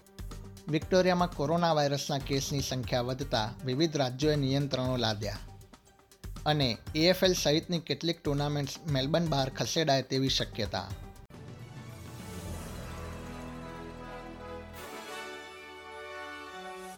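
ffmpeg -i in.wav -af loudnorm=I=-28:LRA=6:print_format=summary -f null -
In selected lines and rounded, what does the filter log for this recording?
Input Integrated:    -30.7 LUFS
Input True Peak:     -10.3 dBTP
Input LRA:            13.3 LU
Input Threshold:     -42.5 LUFS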